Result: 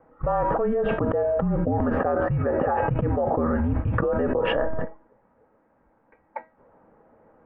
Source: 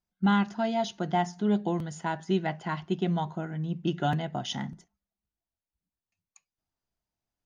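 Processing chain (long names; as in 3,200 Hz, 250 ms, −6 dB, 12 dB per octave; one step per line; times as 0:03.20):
noise that follows the level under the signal 25 dB
single-sideband voice off tune −240 Hz 260–2,000 Hz
tuned comb filter 320 Hz, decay 0.34 s, harmonics all, mix 70%
hollow resonant body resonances 240/510/820 Hz, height 14 dB, ringing for 25 ms
envelope flattener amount 100%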